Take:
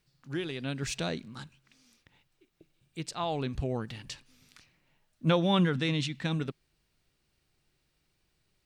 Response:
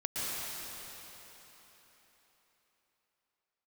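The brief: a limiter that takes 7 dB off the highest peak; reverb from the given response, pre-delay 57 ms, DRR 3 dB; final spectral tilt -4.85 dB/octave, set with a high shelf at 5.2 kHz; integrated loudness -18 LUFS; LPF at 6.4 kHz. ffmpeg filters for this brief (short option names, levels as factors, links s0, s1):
-filter_complex "[0:a]lowpass=6400,highshelf=f=5200:g=4.5,alimiter=limit=0.0944:level=0:latency=1,asplit=2[s0][s1];[1:a]atrim=start_sample=2205,adelay=57[s2];[s1][s2]afir=irnorm=-1:irlink=0,volume=0.335[s3];[s0][s3]amix=inputs=2:normalize=0,volume=5.62"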